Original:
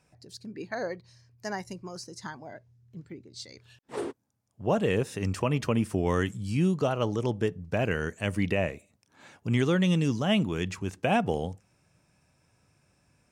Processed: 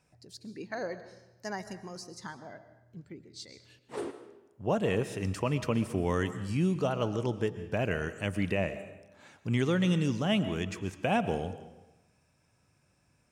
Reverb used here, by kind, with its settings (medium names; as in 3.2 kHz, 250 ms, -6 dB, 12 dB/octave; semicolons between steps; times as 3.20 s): algorithmic reverb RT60 1 s, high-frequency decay 0.8×, pre-delay 85 ms, DRR 12 dB; trim -3 dB